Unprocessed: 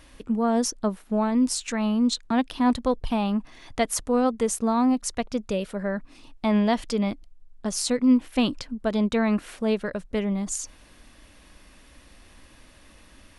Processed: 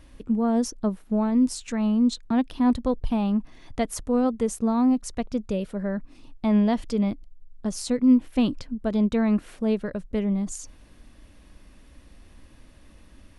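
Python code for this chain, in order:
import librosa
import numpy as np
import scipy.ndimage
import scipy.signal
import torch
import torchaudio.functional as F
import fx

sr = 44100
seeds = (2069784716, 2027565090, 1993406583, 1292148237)

y = fx.low_shelf(x, sr, hz=470.0, db=10.0)
y = F.gain(torch.from_numpy(y), -6.5).numpy()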